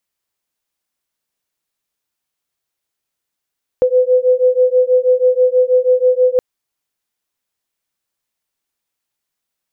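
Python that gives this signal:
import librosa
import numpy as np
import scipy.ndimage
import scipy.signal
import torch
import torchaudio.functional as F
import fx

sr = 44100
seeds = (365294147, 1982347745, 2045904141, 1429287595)

y = fx.two_tone_beats(sr, length_s=2.57, hz=502.0, beat_hz=6.2, level_db=-12.5)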